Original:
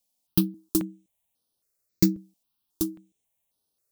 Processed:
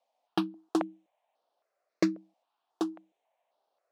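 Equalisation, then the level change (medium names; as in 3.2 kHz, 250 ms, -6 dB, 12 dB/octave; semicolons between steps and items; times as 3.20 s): resonant high-pass 670 Hz, resonance Q 3.4; low-pass 2 kHz 12 dB/octave; +8.0 dB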